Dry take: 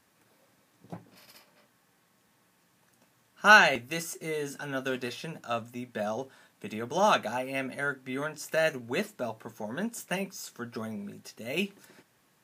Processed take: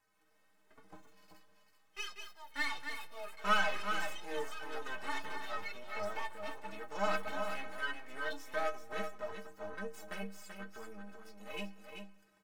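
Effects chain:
parametric band 3,400 Hz −7.5 dB 0.99 octaves
half-wave rectification
mid-hump overdrive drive 10 dB, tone 4,000 Hz, clips at −15.5 dBFS
stiff-string resonator 93 Hz, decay 0.35 s, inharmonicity 0.03
single-tap delay 384 ms −7 dB
delay with pitch and tempo change per echo 122 ms, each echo +6 semitones, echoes 2, each echo −6 dB
on a send at −21 dB: convolution reverb RT60 1.7 s, pre-delay 76 ms
on the sum: level +2 dB

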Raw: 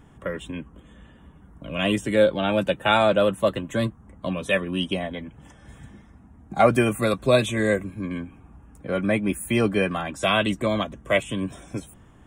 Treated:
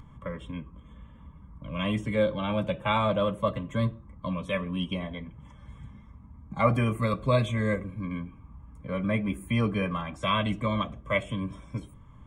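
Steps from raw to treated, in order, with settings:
low-pass filter 2,300 Hz 6 dB per octave
upward compression, threshold −43 dBFS
convolution reverb RT60 0.45 s, pre-delay 3 ms, DRR 15.5 dB
level −7 dB

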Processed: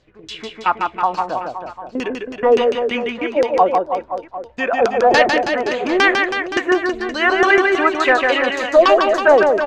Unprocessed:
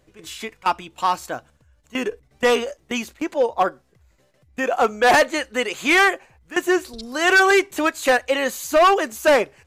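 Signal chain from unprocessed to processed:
auto-filter low-pass saw down 3.5 Hz 350–5,400 Hz
reverse bouncing-ball delay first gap 150 ms, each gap 1.15×, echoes 5

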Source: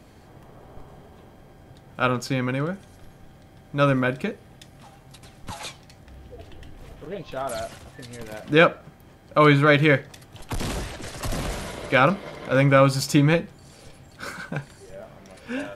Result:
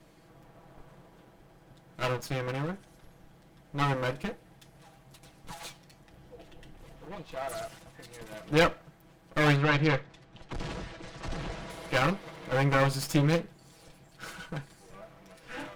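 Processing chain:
lower of the sound and its delayed copy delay 6.1 ms
0:09.56–0:11.70: high-frequency loss of the air 110 metres
level −6 dB

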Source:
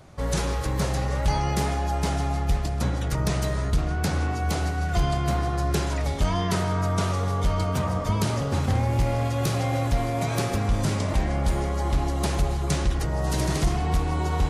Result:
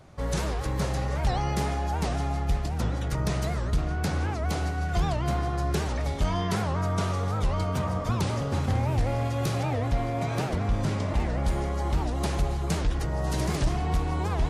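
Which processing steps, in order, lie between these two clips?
high-shelf EQ 5,900 Hz −4 dB, from 0:09.63 −11.5 dB, from 0:11.20 −4 dB
wow of a warped record 78 rpm, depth 250 cents
level −2.5 dB

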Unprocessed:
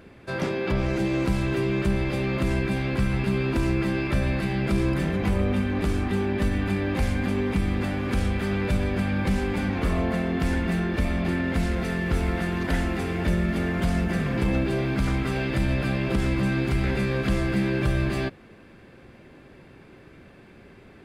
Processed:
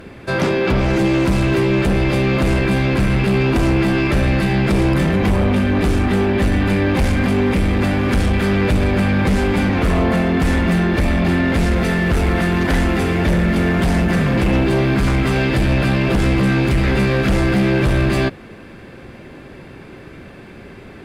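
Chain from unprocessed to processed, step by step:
in parallel at −4 dB: sine wavefolder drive 9 dB, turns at −11.5 dBFS

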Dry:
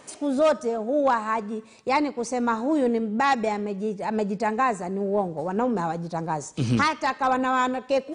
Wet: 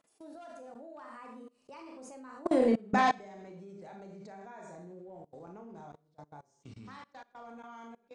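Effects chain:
source passing by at 0:02.71, 33 m/s, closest 7.9 metres
four-comb reverb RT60 0.47 s, combs from 27 ms, DRR 1.5 dB
output level in coarse steps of 24 dB

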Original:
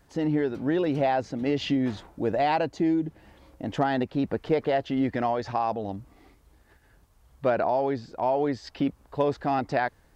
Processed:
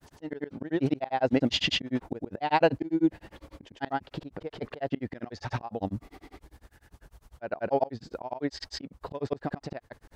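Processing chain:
granular cloud 100 ms, grains 10 per second
volume swells 337 ms
level +9 dB

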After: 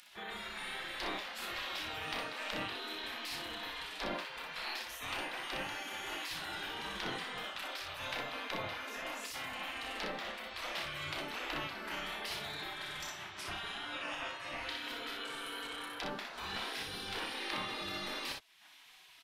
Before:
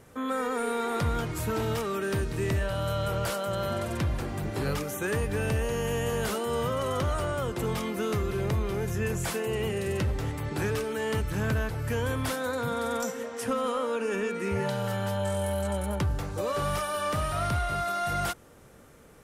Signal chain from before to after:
high shelf with overshoot 5,400 Hz −12 dB, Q 1.5
upward compression, threshold −37 dBFS
gate on every frequency bin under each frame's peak −20 dB weak
on a send: ambience of single reflections 32 ms −6.5 dB, 61 ms −4.5 dB

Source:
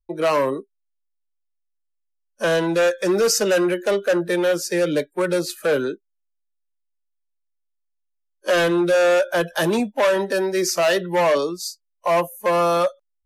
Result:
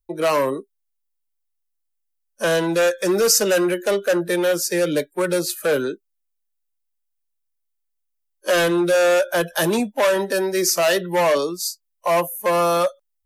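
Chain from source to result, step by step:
high-shelf EQ 8,200 Hz +11.5 dB

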